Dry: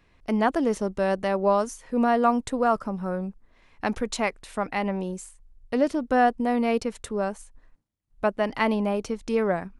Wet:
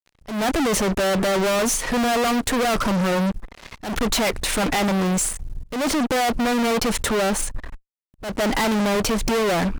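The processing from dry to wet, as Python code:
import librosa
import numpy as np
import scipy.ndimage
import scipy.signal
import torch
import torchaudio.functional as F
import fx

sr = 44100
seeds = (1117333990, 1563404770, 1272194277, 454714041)

y = fx.fuzz(x, sr, gain_db=47.0, gate_db=-54.0)
y = fx.auto_swell(y, sr, attack_ms=239.0)
y = F.gain(torch.from_numpy(y), -6.0).numpy()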